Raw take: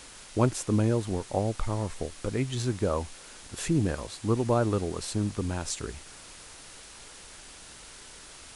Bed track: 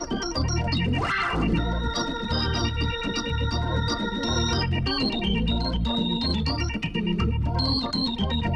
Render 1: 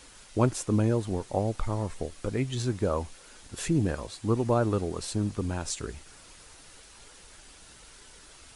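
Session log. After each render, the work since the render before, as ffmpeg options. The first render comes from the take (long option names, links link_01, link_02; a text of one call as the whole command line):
ffmpeg -i in.wav -af "afftdn=noise_reduction=6:noise_floor=-48" out.wav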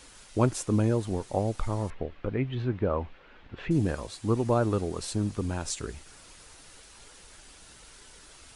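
ffmpeg -i in.wav -filter_complex "[0:a]asettb=1/sr,asplit=3[link_01][link_02][link_03];[link_01]atrim=end=1.904[link_04];[link_02]atrim=start=1.9:end=3.71,asetpts=PTS-STARTPTS,afade=type=in:duration=0.004:curve=qsin,afade=type=out:start_time=1.806:duration=0.004:curve=qsin,lowpass=frequency=2900:width=0.5412,lowpass=frequency=2900:width=1.3066[link_05];[link_03]atrim=start=3.706[link_06];[link_04][link_05]acrossfade=duration=0.004:curve1=hsin:curve2=qsin[link_07];[link_07][link_06]acrossfade=duration=0.004:curve1=qsin:curve2=hsin" out.wav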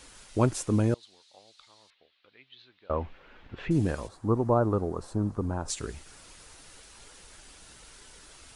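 ffmpeg -i in.wav -filter_complex "[0:a]asettb=1/sr,asplit=3[link_01][link_02][link_03];[link_01]atrim=end=0.944[link_04];[link_02]atrim=start=0.94:end=2.9,asetpts=PTS-STARTPTS,afade=type=in:duration=0.004:curve=qsin,afade=type=out:start_time=1.956:duration=0.004:curve=qsin,bandpass=frequency=4000:width_type=q:width=3.6[link_05];[link_03]atrim=start=2.896[link_06];[link_04][link_05]acrossfade=duration=0.004:curve1=hsin:curve2=qsin[link_07];[link_07][link_06]acrossfade=duration=0.004:curve1=qsin:curve2=hsin,asplit=3[link_08][link_09][link_10];[link_08]afade=type=out:start_time=4.07:duration=0.02[link_11];[link_09]highshelf=frequency=1700:width_type=q:width=1.5:gain=-13.5,afade=type=in:start_time=4.07:duration=0.02,afade=type=out:start_time=5.68:duration=0.02[link_12];[link_10]afade=type=in:start_time=5.68:duration=0.02[link_13];[link_11][link_12][link_13]amix=inputs=3:normalize=0" out.wav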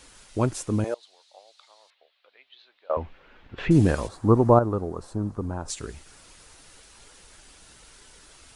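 ffmpeg -i in.wav -filter_complex "[0:a]asettb=1/sr,asplit=3[link_01][link_02][link_03];[link_01]atrim=end=0.844[link_04];[link_02]atrim=start=0.84:end=2.97,asetpts=PTS-STARTPTS,afade=type=in:duration=0.004:curve=qsin,afade=type=out:start_time=2.126:duration=0.004:curve=qsin,highpass=frequency=610:width_type=q:width=2.1[link_05];[link_03]atrim=start=2.966[link_06];[link_04][link_05]acrossfade=duration=0.004:curve1=hsin:curve2=qsin[link_07];[link_07][link_06]acrossfade=duration=0.004:curve1=qsin:curve2=hsin,asplit=3[link_08][link_09][link_10];[link_08]atrim=end=3.582[link_11];[link_09]atrim=start=3.578:end=4.592,asetpts=PTS-STARTPTS,volume=7.5dB[link_12];[link_10]atrim=start=4.588[link_13];[link_11][link_12]acrossfade=duration=0.004:curve1=hsin:curve2=hsin[link_14];[link_14][link_13]acrossfade=duration=0.004:curve1=hsin:curve2=hsin" out.wav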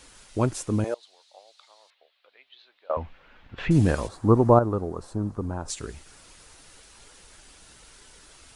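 ffmpeg -i in.wav -filter_complex "[0:a]asettb=1/sr,asplit=3[link_01][link_02][link_03];[link_01]atrim=end=2.914[link_04];[link_02]atrim=start=2.91:end=3.87,asetpts=PTS-STARTPTS,afade=type=in:duration=0.004:curve=qsin,afade=type=out:start_time=0.956:duration=0.004:curve=qsin,equalizer=frequency=380:width_type=o:width=0.77:gain=-6[link_05];[link_03]atrim=start=3.866[link_06];[link_04][link_05]acrossfade=duration=0.004:curve1=hsin:curve2=qsin[link_07];[link_07][link_06]acrossfade=duration=0.004:curve1=qsin:curve2=hsin" out.wav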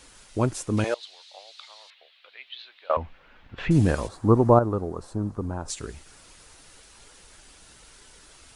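ffmpeg -i in.wav -filter_complex "[0:a]asettb=1/sr,asplit=3[link_01][link_02][link_03];[link_01]atrim=end=0.774[link_04];[link_02]atrim=start=0.77:end=2.97,asetpts=PTS-STARTPTS,afade=type=in:duration=0.004:curve=qsin,afade=type=out:start_time=2.196:duration=0.004:curve=qsin,equalizer=frequency=2900:width=0.44:gain=12.5[link_05];[link_03]atrim=start=2.966[link_06];[link_04][link_05]acrossfade=duration=0.004:curve1=hsin:curve2=qsin[link_07];[link_07][link_06]acrossfade=duration=0.004:curve1=qsin:curve2=hsin" out.wav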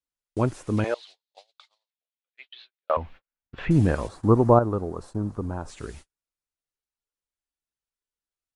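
ffmpeg -i in.wav -filter_complex "[0:a]agate=range=-46dB:threshold=-43dB:ratio=16:detection=peak,acrossover=split=2600[link_01][link_02];[link_02]acompressor=threshold=-47dB:ratio=4:attack=1:release=60[link_03];[link_01][link_03]amix=inputs=2:normalize=0" out.wav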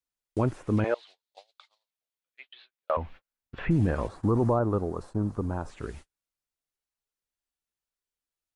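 ffmpeg -i in.wav -filter_complex "[0:a]acrossover=split=2800[link_01][link_02];[link_01]alimiter=limit=-16dB:level=0:latency=1:release=17[link_03];[link_02]acompressor=threshold=-58dB:ratio=6[link_04];[link_03][link_04]amix=inputs=2:normalize=0" out.wav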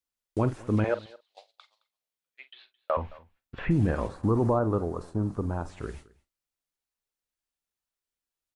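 ffmpeg -i in.wav -filter_complex "[0:a]asplit=2[link_01][link_02];[link_02]adelay=46,volume=-14dB[link_03];[link_01][link_03]amix=inputs=2:normalize=0,aecho=1:1:217:0.0708" out.wav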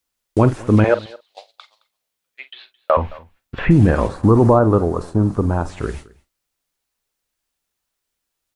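ffmpeg -i in.wav -af "volume=12dB,alimiter=limit=-3dB:level=0:latency=1" out.wav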